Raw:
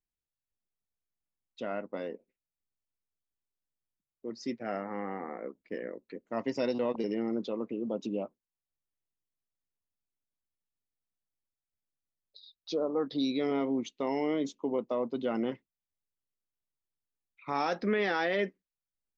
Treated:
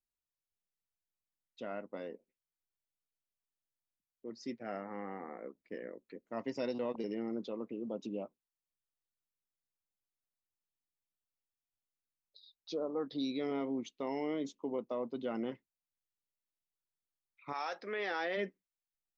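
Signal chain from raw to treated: 17.52–18.36 HPF 840 Hz -> 240 Hz 12 dB/oct; gain -6 dB

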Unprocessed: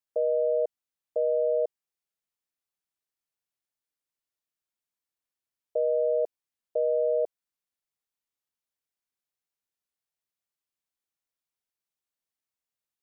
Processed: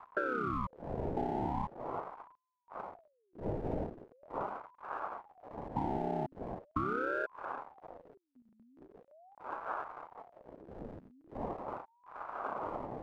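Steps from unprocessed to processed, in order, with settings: chord vocoder minor triad, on C3; wind noise 420 Hz -42 dBFS; elliptic low-pass 690 Hz; compressor 5:1, threshold -38 dBFS, peak gain reduction 13.5 dB; backlash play -47 dBFS; ring modulator with a swept carrier 620 Hz, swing 65%, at 0.41 Hz; gain +8 dB

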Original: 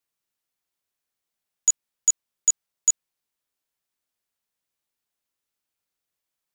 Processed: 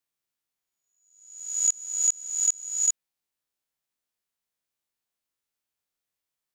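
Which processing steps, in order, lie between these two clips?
spectral swells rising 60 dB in 0.80 s; gain -5 dB

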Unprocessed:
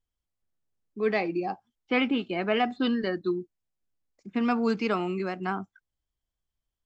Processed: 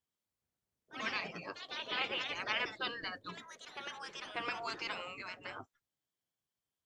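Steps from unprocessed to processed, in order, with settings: spectral gate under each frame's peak -15 dB weak; echoes that change speed 0.102 s, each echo +3 st, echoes 2, each echo -6 dB; gain -1 dB

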